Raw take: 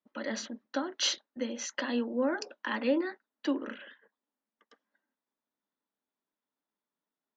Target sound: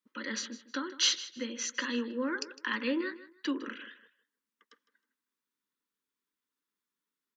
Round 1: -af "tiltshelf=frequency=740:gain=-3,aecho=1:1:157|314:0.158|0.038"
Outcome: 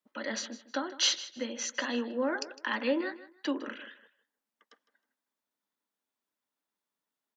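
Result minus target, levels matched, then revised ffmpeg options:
500 Hz band +4.0 dB
-af "asuperstop=centerf=700:order=4:qfactor=1.4,tiltshelf=frequency=740:gain=-3,aecho=1:1:157|314:0.158|0.038"

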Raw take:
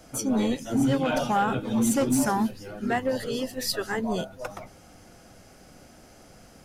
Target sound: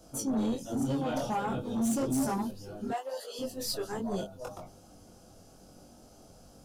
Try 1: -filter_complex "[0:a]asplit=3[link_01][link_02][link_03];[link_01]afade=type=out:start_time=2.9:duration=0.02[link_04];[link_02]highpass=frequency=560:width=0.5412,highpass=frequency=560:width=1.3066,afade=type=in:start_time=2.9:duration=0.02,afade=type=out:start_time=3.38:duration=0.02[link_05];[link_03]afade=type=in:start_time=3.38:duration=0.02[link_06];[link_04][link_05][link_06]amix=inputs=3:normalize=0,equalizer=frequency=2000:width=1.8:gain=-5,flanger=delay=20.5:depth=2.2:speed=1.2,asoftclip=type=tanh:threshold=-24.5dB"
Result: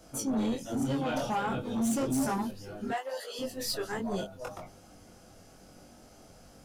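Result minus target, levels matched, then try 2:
2,000 Hz band +5.0 dB
-filter_complex "[0:a]asplit=3[link_01][link_02][link_03];[link_01]afade=type=out:start_time=2.9:duration=0.02[link_04];[link_02]highpass=frequency=560:width=0.5412,highpass=frequency=560:width=1.3066,afade=type=in:start_time=2.9:duration=0.02,afade=type=out:start_time=3.38:duration=0.02[link_05];[link_03]afade=type=in:start_time=3.38:duration=0.02[link_06];[link_04][link_05][link_06]amix=inputs=3:normalize=0,equalizer=frequency=2000:width=1.8:gain=-16.5,flanger=delay=20.5:depth=2.2:speed=1.2,asoftclip=type=tanh:threshold=-24.5dB"

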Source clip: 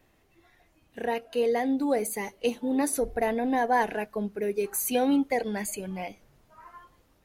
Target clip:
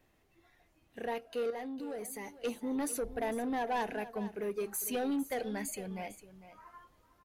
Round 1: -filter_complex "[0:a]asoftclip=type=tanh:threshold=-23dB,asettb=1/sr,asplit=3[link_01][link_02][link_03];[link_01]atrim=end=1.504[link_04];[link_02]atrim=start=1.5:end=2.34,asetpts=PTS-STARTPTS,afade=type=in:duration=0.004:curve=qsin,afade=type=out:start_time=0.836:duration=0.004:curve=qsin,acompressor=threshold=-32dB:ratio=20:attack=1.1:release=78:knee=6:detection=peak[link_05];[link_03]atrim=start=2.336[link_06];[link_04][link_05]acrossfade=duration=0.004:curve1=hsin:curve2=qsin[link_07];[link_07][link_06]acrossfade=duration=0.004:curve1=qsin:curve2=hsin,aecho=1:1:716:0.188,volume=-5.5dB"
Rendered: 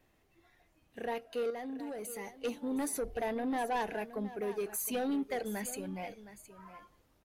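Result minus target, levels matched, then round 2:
echo 264 ms late
-filter_complex "[0:a]asoftclip=type=tanh:threshold=-23dB,asettb=1/sr,asplit=3[link_01][link_02][link_03];[link_01]atrim=end=1.504[link_04];[link_02]atrim=start=1.5:end=2.34,asetpts=PTS-STARTPTS,afade=type=in:duration=0.004:curve=qsin,afade=type=out:start_time=0.836:duration=0.004:curve=qsin,acompressor=threshold=-32dB:ratio=20:attack=1.1:release=78:knee=6:detection=peak[link_05];[link_03]atrim=start=2.336[link_06];[link_04][link_05]acrossfade=duration=0.004:curve1=hsin:curve2=qsin[link_07];[link_07][link_06]acrossfade=duration=0.004:curve1=qsin:curve2=hsin,aecho=1:1:452:0.188,volume=-5.5dB"

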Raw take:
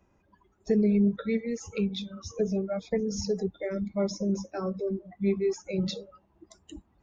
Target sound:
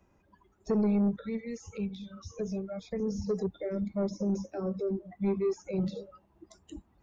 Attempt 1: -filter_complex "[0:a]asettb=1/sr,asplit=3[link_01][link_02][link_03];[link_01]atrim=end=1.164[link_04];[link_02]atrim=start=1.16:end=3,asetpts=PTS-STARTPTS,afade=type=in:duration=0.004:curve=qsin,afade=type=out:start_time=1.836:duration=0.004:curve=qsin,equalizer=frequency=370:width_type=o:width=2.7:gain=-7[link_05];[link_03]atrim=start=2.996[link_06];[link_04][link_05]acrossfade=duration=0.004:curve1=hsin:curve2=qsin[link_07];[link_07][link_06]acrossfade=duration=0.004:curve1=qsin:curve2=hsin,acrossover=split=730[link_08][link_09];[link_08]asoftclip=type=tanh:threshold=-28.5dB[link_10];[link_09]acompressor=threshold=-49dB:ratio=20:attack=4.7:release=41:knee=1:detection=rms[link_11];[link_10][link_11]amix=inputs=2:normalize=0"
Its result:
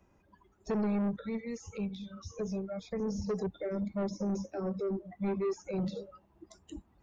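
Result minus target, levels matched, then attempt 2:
soft clipping: distortion +6 dB
-filter_complex "[0:a]asettb=1/sr,asplit=3[link_01][link_02][link_03];[link_01]atrim=end=1.164[link_04];[link_02]atrim=start=1.16:end=3,asetpts=PTS-STARTPTS,afade=type=in:duration=0.004:curve=qsin,afade=type=out:start_time=1.836:duration=0.004:curve=qsin,equalizer=frequency=370:width_type=o:width=2.7:gain=-7[link_05];[link_03]atrim=start=2.996[link_06];[link_04][link_05]acrossfade=duration=0.004:curve1=hsin:curve2=qsin[link_07];[link_07][link_06]acrossfade=duration=0.004:curve1=qsin:curve2=hsin,acrossover=split=730[link_08][link_09];[link_08]asoftclip=type=tanh:threshold=-22dB[link_10];[link_09]acompressor=threshold=-49dB:ratio=20:attack=4.7:release=41:knee=1:detection=rms[link_11];[link_10][link_11]amix=inputs=2:normalize=0"

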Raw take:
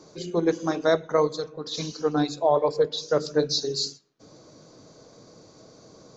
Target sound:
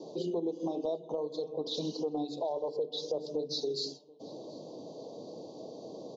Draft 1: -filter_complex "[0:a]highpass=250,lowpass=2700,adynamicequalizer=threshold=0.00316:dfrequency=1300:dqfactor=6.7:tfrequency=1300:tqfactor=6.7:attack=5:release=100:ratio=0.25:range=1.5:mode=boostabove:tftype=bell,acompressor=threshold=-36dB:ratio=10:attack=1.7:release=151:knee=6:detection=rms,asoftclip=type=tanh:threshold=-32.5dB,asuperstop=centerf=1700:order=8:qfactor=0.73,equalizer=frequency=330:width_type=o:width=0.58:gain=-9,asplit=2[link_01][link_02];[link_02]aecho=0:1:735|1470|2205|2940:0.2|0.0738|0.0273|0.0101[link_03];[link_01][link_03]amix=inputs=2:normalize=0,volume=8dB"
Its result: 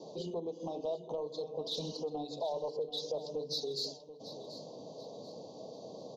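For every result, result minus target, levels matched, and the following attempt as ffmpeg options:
soft clipping: distortion +21 dB; echo-to-direct +10.5 dB; 250 Hz band −4.5 dB
-filter_complex "[0:a]highpass=250,lowpass=2700,adynamicequalizer=threshold=0.00316:dfrequency=1300:dqfactor=6.7:tfrequency=1300:tqfactor=6.7:attack=5:release=100:ratio=0.25:range=1.5:mode=boostabove:tftype=bell,acompressor=threshold=-36dB:ratio=10:attack=1.7:release=151:knee=6:detection=rms,asoftclip=type=tanh:threshold=-21dB,asuperstop=centerf=1700:order=8:qfactor=0.73,equalizer=frequency=330:width_type=o:width=0.58:gain=-9,asplit=2[link_01][link_02];[link_02]aecho=0:1:735|1470|2205|2940:0.2|0.0738|0.0273|0.0101[link_03];[link_01][link_03]amix=inputs=2:normalize=0,volume=8dB"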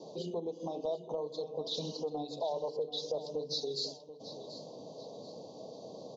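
echo-to-direct +10.5 dB; 250 Hz band −4.5 dB
-filter_complex "[0:a]highpass=250,lowpass=2700,adynamicequalizer=threshold=0.00316:dfrequency=1300:dqfactor=6.7:tfrequency=1300:tqfactor=6.7:attack=5:release=100:ratio=0.25:range=1.5:mode=boostabove:tftype=bell,acompressor=threshold=-36dB:ratio=10:attack=1.7:release=151:knee=6:detection=rms,asoftclip=type=tanh:threshold=-21dB,asuperstop=centerf=1700:order=8:qfactor=0.73,equalizer=frequency=330:width_type=o:width=0.58:gain=-9,asplit=2[link_01][link_02];[link_02]aecho=0:1:735|1470:0.0596|0.022[link_03];[link_01][link_03]amix=inputs=2:normalize=0,volume=8dB"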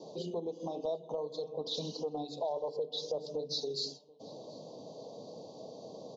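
250 Hz band −5.0 dB
-filter_complex "[0:a]highpass=250,lowpass=2700,adynamicequalizer=threshold=0.00316:dfrequency=1300:dqfactor=6.7:tfrequency=1300:tqfactor=6.7:attack=5:release=100:ratio=0.25:range=1.5:mode=boostabove:tftype=bell,acompressor=threshold=-36dB:ratio=10:attack=1.7:release=151:knee=6:detection=rms,asoftclip=type=tanh:threshold=-21dB,asuperstop=centerf=1700:order=8:qfactor=0.73,asplit=2[link_01][link_02];[link_02]aecho=0:1:735|1470:0.0596|0.022[link_03];[link_01][link_03]amix=inputs=2:normalize=0,volume=8dB"

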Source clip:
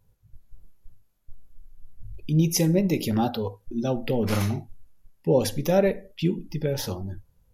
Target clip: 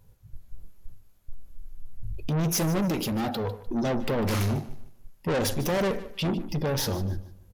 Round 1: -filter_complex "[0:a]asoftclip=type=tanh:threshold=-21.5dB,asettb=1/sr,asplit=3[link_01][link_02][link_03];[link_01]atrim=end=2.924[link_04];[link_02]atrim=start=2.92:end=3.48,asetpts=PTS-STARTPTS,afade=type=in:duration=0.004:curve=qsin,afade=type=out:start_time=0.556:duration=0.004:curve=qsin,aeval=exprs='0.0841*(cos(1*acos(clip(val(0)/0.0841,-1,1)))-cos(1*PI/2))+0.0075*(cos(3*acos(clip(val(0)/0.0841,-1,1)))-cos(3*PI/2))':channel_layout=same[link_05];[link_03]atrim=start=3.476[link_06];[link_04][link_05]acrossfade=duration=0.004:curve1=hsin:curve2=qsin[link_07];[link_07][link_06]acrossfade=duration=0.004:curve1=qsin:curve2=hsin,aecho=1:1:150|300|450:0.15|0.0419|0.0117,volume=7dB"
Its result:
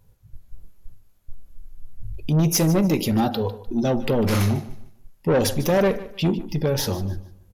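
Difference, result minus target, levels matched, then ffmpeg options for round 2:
soft clipping: distortion −6 dB
-filter_complex "[0:a]asoftclip=type=tanh:threshold=-30.5dB,asettb=1/sr,asplit=3[link_01][link_02][link_03];[link_01]atrim=end=2.924[link_04];[link_02]atrim=start=2.92:end=3.48,asetpts=PTS-STARTPTS,afade=type=in:duration=0.004:curve=qsin,afade=type=out:start_time=0.556:duration=0.004:curve=qsin,aeval=exprs='0.0841*(cos(1*acos(clip(val(0)/0.0841,-1,1)))-cos(1*PI/2))+0.0075*(cos(3*acos(clip(val(0)/0.0841,-1,1)))-cos(3*PI/2))':channel_layout=same[link_05];[link_03]atrim=start=3.476[link_06];[link_04][link_05]acrossfade=duration=0.004:curve1=hsin:curve2=qsin[link_07];[link_07][link_06]acrossfade=duration=0.004:curve1=qsin:curve2=hsin,aecho=1:1:150|300|450:0.15|0.0419|0.0117,volume=7dB"

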